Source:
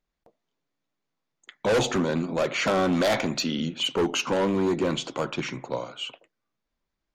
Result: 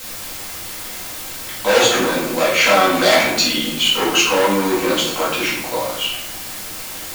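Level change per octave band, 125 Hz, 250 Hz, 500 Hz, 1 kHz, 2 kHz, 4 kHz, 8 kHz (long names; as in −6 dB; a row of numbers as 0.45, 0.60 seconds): 0.0, +4.5, +8.0, +11.5, +13.5, +13.5, +15.5 decibels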